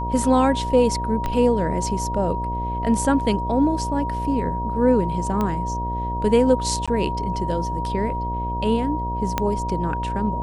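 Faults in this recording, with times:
mains buzz 60 Hz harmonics 12 −28 dBFS
whistle 950 Hz −26 dBFS
0:01.26: click −12 dBFS
0:05.41: click −12 dBFS
0:06.86–0:06.88: drop-out 16 ms
0:09.38: click −6 dBFS

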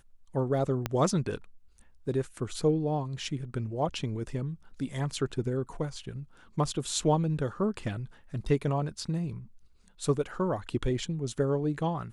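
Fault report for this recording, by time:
0:00.86: click −14 dBFS

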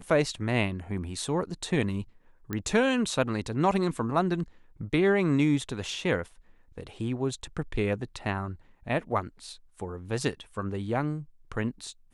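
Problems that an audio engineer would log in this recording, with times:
0:02.53: click −18 dBFS

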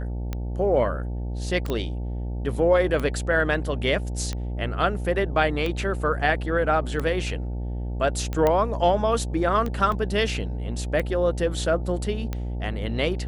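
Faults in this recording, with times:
mains buzz 60 Hz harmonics 15 −29 dBFS
scratch tick 45 rpm −16 dBFS
0:01.70: click −15 dBFS
0:08.47: click −10 dBFS
0:09.92: drop-out 2.5 ms

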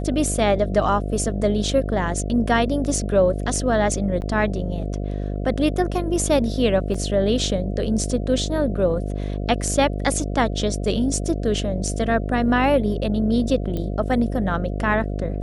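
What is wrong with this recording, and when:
mains buzz 50 Hz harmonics 14 −26 dBFS
0:04.21–0:04.22: drop-out 9.7 ms
0:06.94: drop-out 4.6 ms
0:13.77: click −16 dBFS

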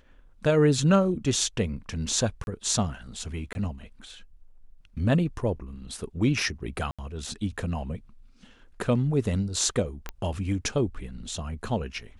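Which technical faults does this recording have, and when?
0:02.44–0:02.47: drop-out 31 ms
0:03.53–0:03.55: drop-out 21 ms
0:06.91–0:06.99: drop-out 76 ms
0:10.09: click −18 dBFS

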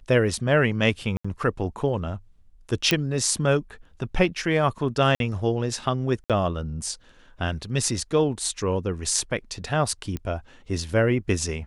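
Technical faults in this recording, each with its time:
0:01.17–0:01.25: drop-out 75 ms
0:02.91: click −5 dBFS
0:05.15–0:05.20: drop-out 52 ms
0:06.24–0:06.30: drop-out 57 ms
0:10.17: click −18 dBFS

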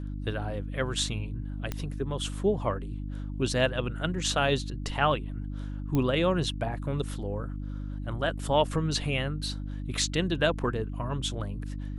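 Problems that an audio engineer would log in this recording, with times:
mains hum 50 Hz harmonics 6 −35 dBFS
0:01.72: click −17 dBFS
0:05.95: click −16 dBFS

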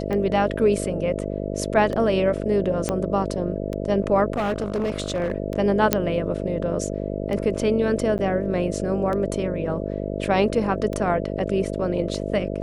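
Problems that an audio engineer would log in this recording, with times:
mains buzz 50 Hz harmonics 13 −28 dBFS
scratch tick 33 1/3 rpm −17 dBFS
0:02.89: click −9 dBFS
0:04.32–0:05.32: clipping −20 dBFS
0:05.93: click −1 dBFS
0:08.18–0:08.19: drop-out 9.2 ms

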